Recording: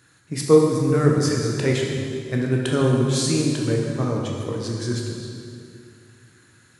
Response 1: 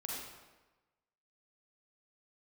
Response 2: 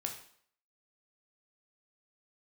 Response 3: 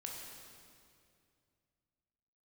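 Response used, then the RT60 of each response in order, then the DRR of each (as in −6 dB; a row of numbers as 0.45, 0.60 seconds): 3; 1.2, 0.60, 2.4 seconds; −4.0, 2.0, −1.5 decibels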